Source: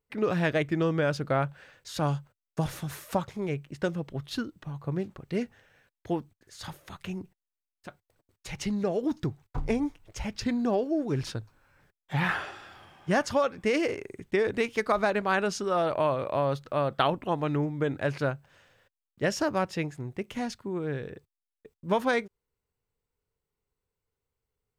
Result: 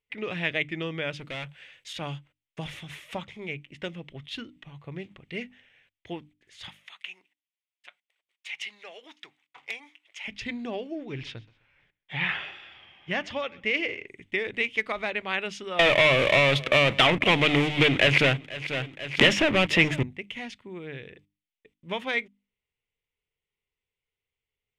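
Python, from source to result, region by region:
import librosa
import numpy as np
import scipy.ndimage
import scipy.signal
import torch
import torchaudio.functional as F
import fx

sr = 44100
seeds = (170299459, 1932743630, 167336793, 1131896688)

y = fx.chain(x, sr, fx.high_shelf(hz=5100.0, db=10.5),
    fx.clip_hard(threshold_db=-28.5), at=(1.19, 1.93))
y = fx.chain(y, sr, fx.highpass(hz=970.0, slope=12),
    fx.overflow_wrap(gain_db=22.5), at=(6.69, 10.28))
y = fx.chain(y, sr, fx.lowpass(hz=5600.0, slope=12),
    fx.echo_feedback(ms=128, feedback_pct=31, wet_db=-23), at=(10.95, 14.08))
y = fx.chain(y, sr, fx.leveller(passes=5),
    fx.echo_feedback(ms=489, feedback_pct=16, wet_db=-23.0),
    fx.band_squash(depth_pct=100), at=(15.79, 20.03))
y = scipy.signal.sosfilt(scipy.signal.butter(2, 9300.0, 'lowpass', fs=sr, output='sos'), y)
y = fx.band_shelf(y, sr, hz=2600.0, db=14.5, octaves=1.1)
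y = fx.hum_notches(y, sr, base_hz=50, count=6)
y = y * librosa.db_to_amplitude(-7.0)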